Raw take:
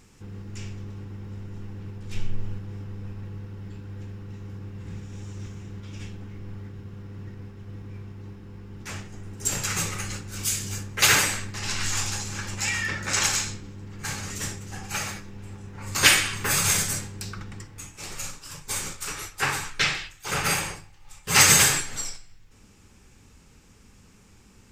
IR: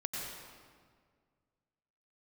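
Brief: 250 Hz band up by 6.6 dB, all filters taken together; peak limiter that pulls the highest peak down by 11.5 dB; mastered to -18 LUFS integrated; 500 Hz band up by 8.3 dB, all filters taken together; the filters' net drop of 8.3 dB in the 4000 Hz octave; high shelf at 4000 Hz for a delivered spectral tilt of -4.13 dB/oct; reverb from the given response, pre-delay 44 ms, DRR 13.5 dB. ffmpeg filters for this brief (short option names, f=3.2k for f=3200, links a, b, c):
-filter_complex "[0:a]equalizer=f=250:t=o:g=7.5,equalizer=f=500:t=o:g=8,highshelf=f=4k:g=-5,equalizer=f=4k:t=o:g=-8.5,alimiter=limit=-16.5dB:level=0:latency=1,asplit=2[a][b];[1:a]atrim=start_sample=2205,adelay=44[c];[b][c]afir=irnorm=-1:irlink=0,volume=-16dB[d];[a][d]amix=inputs=2:normalize=0,volume=13.5dB"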